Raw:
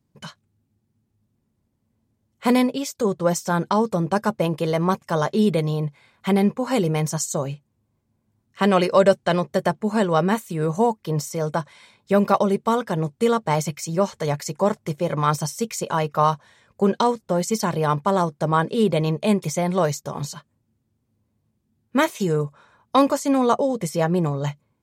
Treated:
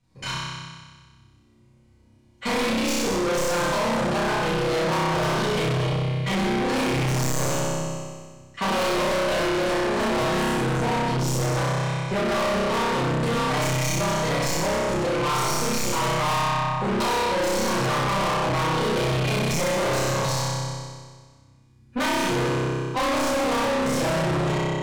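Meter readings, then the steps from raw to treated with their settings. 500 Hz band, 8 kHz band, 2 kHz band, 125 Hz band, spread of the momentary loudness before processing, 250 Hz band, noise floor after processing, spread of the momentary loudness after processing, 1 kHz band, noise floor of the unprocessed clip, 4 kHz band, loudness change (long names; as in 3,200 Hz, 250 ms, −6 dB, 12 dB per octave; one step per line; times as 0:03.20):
−2.5 dB, +2.5 dB, +5.0 dB, 0.0 dB, 8 LU, −4.0 dB, −56 dBFS, 5 LU, −1.0 dB, −72 dBFS, +6.0 dB, −1.5 dB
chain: stylus tracing distortion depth 0.051 ms
low-pass filter 7,900 Hz 12 dB per octave
high-shelf EQ 2,000 Hz −9 dB
in parallel at 0 dB: brickwall limiter −18 dBFS, peak gain reduction 12 dB
on the sum: tilt shelving filter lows −7.5 dB, about 1,200 Hz
amplitude modulation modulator 26 Hz, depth 95%
flutter between parallel walls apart 5.3 metres, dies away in 1.5 s
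rectangular room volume 61 cubic metres, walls mixed, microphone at 1.9 metres
soft clipping −22 dBFS, distortion −4 dB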